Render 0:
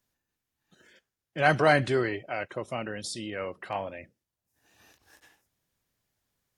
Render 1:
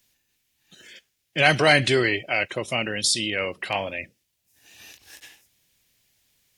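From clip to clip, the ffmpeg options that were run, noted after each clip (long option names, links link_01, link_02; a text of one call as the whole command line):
ffmpeg -i in.wav -filter_complex "[0:a]asplit=2[link_01][link_02];[link_02]alimiter=limit=-18.5dB:level=0:latency=1:release=231,volume=0dB[link_03];[link_01][link_03]amix=inputs=2:normalize=0,highshelf=frequency=1800:width_type=q:width=1.5:gain=8.5" out.wav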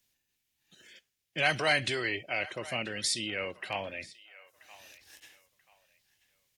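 ffmpeg -i in.wav -filter_complex "[0:a]acrossover=split=580[link_01][link_02];[link_01]alimiter=limit=-23dB:level=0:latency=1[link_03];[link_02]asplit=2[link_04][link_05];[link_05]adelay=984,lowpass=frequency=3900:poles=1,volume=-17dB,asplit=2[link_06][link_07];[link_07]adelay=984,lowpass=frequency=3900:poles=1,volume=0.28,asplit=2[link_08][link_09];[link_09]adelay=984,lowpass=frequency=3900:poles=1,volume=0.28[link_10];[link_04][link_06][link_08][link_10]amix=inputs=4:normalize=0[link_11];[link_03][link_11]amix=inputs=2:normalize=0,volume=-8.5dB" out.wav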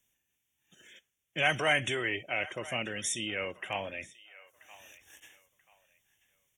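ffmpeg -i in.wav -af "asuperstop=centerf=4500:order=20:qfactor=2.4" -ar 48000 -c:a libopus -b:a 256k out.opus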